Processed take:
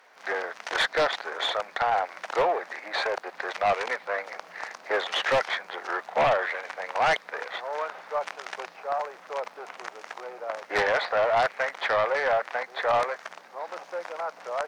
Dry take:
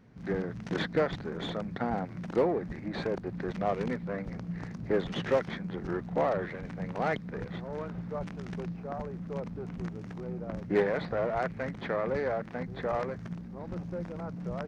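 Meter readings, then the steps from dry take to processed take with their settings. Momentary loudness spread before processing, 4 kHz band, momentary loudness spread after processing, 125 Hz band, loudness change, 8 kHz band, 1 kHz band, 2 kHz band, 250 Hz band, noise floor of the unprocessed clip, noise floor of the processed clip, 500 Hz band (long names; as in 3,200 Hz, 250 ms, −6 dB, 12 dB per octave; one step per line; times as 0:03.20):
9 LU, +13.0 dB, 14 LU, −14.0 dB, +6.0 dB, can't be measured, +10.0 dB, +12.0 dB, −13.0 dB, −44 dBFS, −51 dBFS, +3.5 dB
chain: high-pass filter 650 Hz 24 dB per octave
surface crackle 37 per second −64 dBFS
sine wavefolder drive 7 dB, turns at −20 dBFS
level +2.5 dB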